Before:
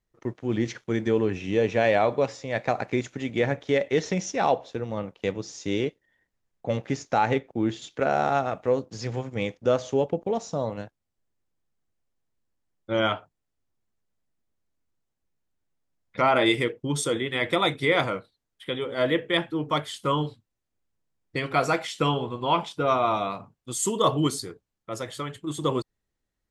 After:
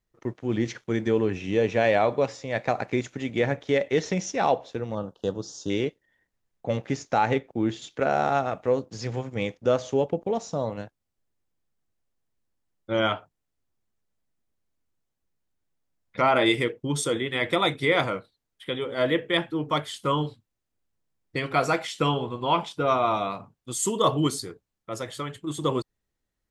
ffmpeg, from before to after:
-filter_complex "[0:a]asettb=1/sr,asplit=3[a][b][c];[a]atrim=end=4.954[d];[b]atrim=start=4.95:end=5.7,asetpts=PTS-STARTPTS,afade=t=in:d=0.004:c=qsin,afade=t=out:st=0.746:d=0.004:c=qsin,asuperstop=centerf=2200:order=4:qfactor=1.3[e];[c]atrim=start=5.696[f];[d][e]acrossfade=d=0.004:c1=hsin:c2=qsin[g];[g][f]acrossfade=d=0.004:c1=qsin:c2=hsin"

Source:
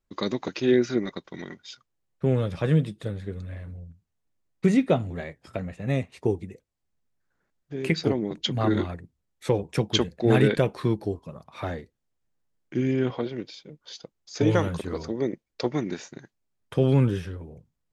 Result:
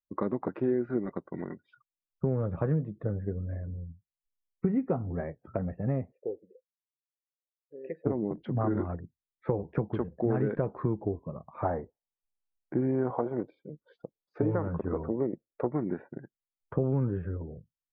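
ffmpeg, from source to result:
-filter_complex "[0:a]asettb=1/sr,asplit=3[a][b][c];[a]atrim=end=3.754[d];[b]atrim=start=3.75:end=5.17,asetpts=PTS-STARTPTS,afade=t=in:d=0.004:c=qsin,afade=t=out:st=1.416:d=0.004:c=qsin,bandreject=f=610:w=6.4[e];[c]atrim=start=5.166[f];[d][e]acrossfade=d=0.004:c1=hsin:c2=qsin[g];[g][f]acrossfade=d=0.004:c1=qsin:c2=hsin,asplit=3[h][i][j];[h]afade=t=out:st=6.11:d=0.02[k];[i]asplit=3[l][m][n];[l]bandpass=f=530:t=q:w=8,volume=0dB[o];[m]bandpass=f=1.84k:t=q:w=8,volume=-6dB[p];[n]bandpass=f=2.48k:t=q:w=8,volume=-9dB[q];[o][p][q]amix=inputs=3:normalize=0,afade=t=in:st=6.11:d=0.02,afade=t=out:st=8.05:d=0.02[r];[j]afade=t=in:st=8.05:d=0.02[s];[k][r][s]amix=inputs=3:normalize=0,asettb=1/sr,asplit=3[t][u][v];[t]atrim=end=11.654[w];[u]atrim=start=11.65:end=13.47,asetpts=PTS-STARTPTS,afade=t=in:d=0.004:c=qsin,afade=t=out:st=1.816:d=0.004:c=qsin,equalizer=f=810:t=o:w=1.3:g=11[x];[v]atrim=start=13.466[y];[w][x]acrossfade=d=0.004:c1=hsin:c2=qsin[z];[z][y]acrossfade=d=0.004:c1=qsin:c2=hsin,asettb=1/sr,asplit=3[aa][ab][ac];[aa]atrim=end=14.464[ad];[ab]atrim=start=14.46:end=17.01,asetpts=PTS-STARTPTS,afade=t=in:d=0.004:c=qsin,afade=t=out:st=2.546:d=0.004:c=qsin,acrossover=split=3200[ae][af];[af]acompressor=threshold=-54dB:ratio=4:attack=1:release=60[ag];[ae][ag]amix=inputs=2:normalize=0[ah];[ac]atrim=start=17.006[ai];[ad][ah]acrossfade=d=0.004:c1=hsin:c2=qsin[aj];[aj][ai]acrossfade=d=0.004:c1=qsin:c2=hsin,afftdn=nr=26:nf=-49,acompressor=threshold=-27dB:ratio=4,lowpass=f=1.4k:w=0.5412,lowpass=f=1.4k:w=1.3066,volume=1.5dB"

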